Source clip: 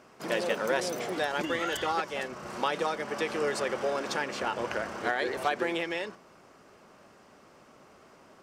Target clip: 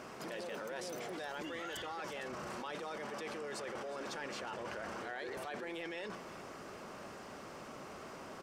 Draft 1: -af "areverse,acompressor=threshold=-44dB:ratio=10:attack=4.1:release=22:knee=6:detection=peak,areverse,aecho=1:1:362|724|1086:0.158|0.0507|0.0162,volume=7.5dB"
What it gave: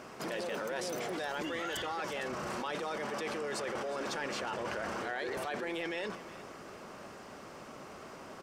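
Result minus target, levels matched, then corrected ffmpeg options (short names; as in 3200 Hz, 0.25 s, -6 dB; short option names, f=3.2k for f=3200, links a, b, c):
compressor: peak gain reduction -6 dB
-af "areverse,acompressor=threshold=-50.5dB:ratio=10:attack=4.1:release=22:knee=6:detection=peak,areverse,aecho=1:1:362|724|1086:0.158|0.0507|0.0162,volume=7.5dB"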